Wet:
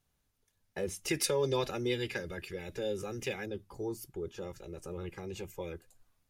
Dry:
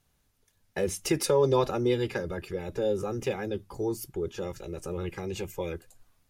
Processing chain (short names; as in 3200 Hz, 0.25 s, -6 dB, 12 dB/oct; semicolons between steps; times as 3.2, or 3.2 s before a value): 1.08–3.46 resonant high shelf 1500 Hz +6.5 dB, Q 1.5; gain -7 dB